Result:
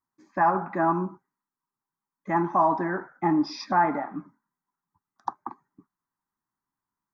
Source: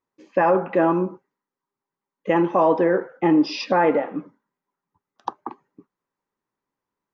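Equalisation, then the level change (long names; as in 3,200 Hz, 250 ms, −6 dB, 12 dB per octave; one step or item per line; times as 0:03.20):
dynamic equaliser 720 Hz, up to +4 dB, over −29 dBFS, Q 1.3
phaser with its sweep stopped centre 1,200 Hz, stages 4
−1.5 dB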